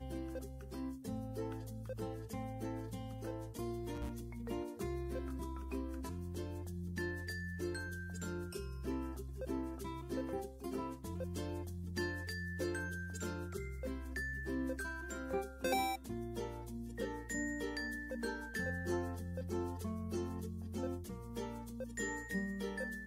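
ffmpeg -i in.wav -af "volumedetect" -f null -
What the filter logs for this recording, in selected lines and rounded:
mean_volume: -41.4 dB
max_volume: -23.6 dB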